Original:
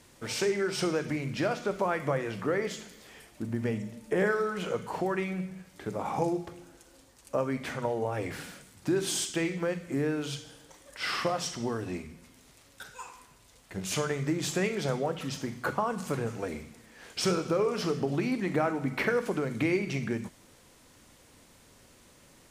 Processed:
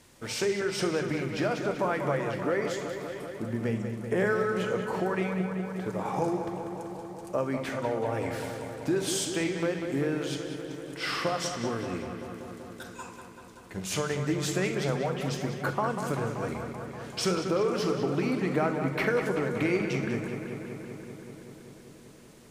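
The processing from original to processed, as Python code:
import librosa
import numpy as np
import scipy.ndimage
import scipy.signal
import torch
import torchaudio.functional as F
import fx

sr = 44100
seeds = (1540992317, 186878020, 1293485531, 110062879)

y = fx.echo_filtered(x, sr, ms=192, feedback_pct=80, hz=4200.0, wet_db=-7.5)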